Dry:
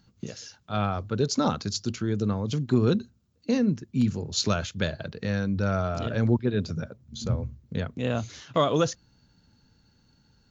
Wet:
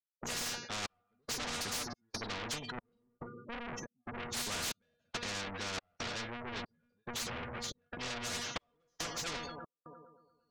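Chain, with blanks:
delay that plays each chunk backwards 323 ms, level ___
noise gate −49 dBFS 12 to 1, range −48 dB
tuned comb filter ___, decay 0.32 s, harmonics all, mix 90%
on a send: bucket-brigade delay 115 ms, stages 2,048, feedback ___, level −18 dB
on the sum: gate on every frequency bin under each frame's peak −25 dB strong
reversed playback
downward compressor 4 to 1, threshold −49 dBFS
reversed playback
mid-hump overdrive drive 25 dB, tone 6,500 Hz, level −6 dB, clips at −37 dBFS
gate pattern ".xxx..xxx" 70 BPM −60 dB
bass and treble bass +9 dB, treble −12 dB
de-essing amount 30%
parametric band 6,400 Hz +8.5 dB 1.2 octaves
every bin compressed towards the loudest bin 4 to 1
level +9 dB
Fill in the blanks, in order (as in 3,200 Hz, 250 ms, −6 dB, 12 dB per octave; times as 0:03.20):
−11.5 dB, 240 Hz, 49%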